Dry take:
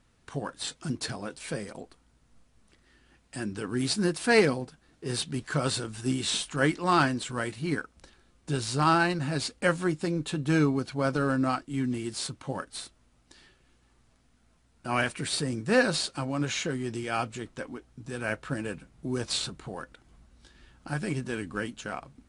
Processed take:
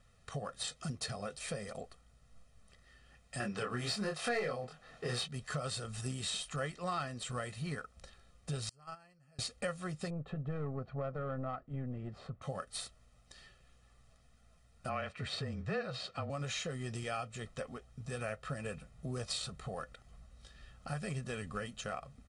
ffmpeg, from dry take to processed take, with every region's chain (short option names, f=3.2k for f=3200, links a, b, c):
-filter_complex "[0:a]asettb=1/sr,asplit=3[a][b][c];[a]atrim=end=3.404[d];[b]atrim=start=3.4:end=5.28,asetpts=PTS-STARTPTS,afade=t=in:d=0.004:c=qsin,afade=t=out:st=1.876:d=0.004:c=qsin,acontrast=36,asplit=2[e][f];[f]highpass=f=720:p=1,volume=12dB,asoftclip=type=tanh:threshold=-5dB[g];[e][g]amix=inputs=2:normalize=0,lowpass=f=2k:p=1,volume=-6dB,asplit=2[h][i];[i]adelay=25,volume=-2.5dB[j];[h][j]amix=inputs=2:normalize=0,atrim=end_sample=82908[k];[c]atrim=start=5.276[l];[d][k]acrossfade=d=0.004:c1=hsin:c2=qsin[m];[m][l]acrossfade=d=0.004:c1=qsin:c2=hsin,asettb=1/sr,asplit=3[n][o][p];[n]atrim=end=8.694[q];[o]atrim=start=8.69:end=9.39,asetpts=PTS-STARTPTS,afade=t=in:d=0.004:c=qsin,afade=t=out:st=0.696:d=0.004:c=qsin,agate=range=-34dB:threshold=-18dB:ratio=16:release=100:detection=peak,asuperstop=centerf=3700:order=8:qfactor=4.9,highshelf=f=6.8k:g=6[r];[p]atrim=start=9.386[s];[q][r]acrossfade=d=0.004:c1=hsin:c2=qsin[t];[t][s]acrossfade=d=0.004:c1=qsin:c2=hsin,asettb=1/sr,asplit=3[u][v][w];[u]atrim=end=10.104[x];[v]atrim=start=10.1:end=12.42,asetpts=PTS-STARTPTS,afade=t=in:d=0.004:c=qsin,afade=t=out:st=2.316:d=0.004:c=qsin,lowpass=1.2k,aeval=exprs='(tanh(10*val(0)+0.4)-tanh(0.4))/10':c=same[y];[w]atrim=start=12.416[z];[x][y]acrossfade=d=0.004:c1=hsin:c2=qsin[aa];[aa][z]acrossfade=d=0.004:c1=qsin:c2=hsin,asettb=1/sr,asplit=3[ab][ac][ad];[ab]atrim=end=14.894[ae];[ac]atrim=start=14.89:end=16.3,asetpts=PTS-STARTPTS,afade=t=in:d=0.004:c=qsin,afade=t=out:st=1.406:d=0.004:c=qsin,highpass=110,lowpass=3.4k,afreqshift=-26[af];[ad]atrim=start=16.296[ag];[ae][af]acrossfade=d=0.004:c1=hsin:c2=qsin[ah];[ah][ag]acrossfade=d=0.004:c1=qsin:c2=hsin,aecho=1:1:1.6:0.83,acompressor=threshold=-33dB:ratio=4,volume=-3.5dB"